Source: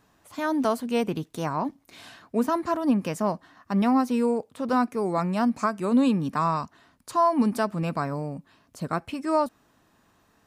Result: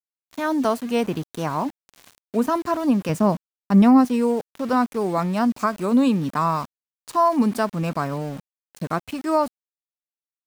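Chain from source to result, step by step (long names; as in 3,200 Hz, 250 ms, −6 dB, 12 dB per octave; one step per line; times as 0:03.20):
0:03.09–0:04.05: low-shelf EQ 320 Hz +9 dB
centre clipping without the shift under −39 dBFS
level +3 dB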